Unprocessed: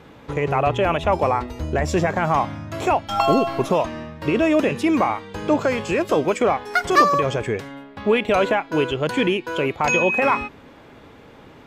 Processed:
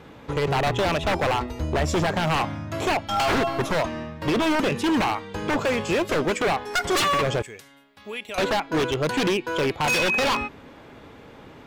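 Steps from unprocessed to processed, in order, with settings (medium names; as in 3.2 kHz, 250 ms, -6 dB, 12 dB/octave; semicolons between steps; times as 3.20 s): 7.42–8.38 s: pre-emphasis filter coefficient 0.9; wavefolder -16.5 dBFS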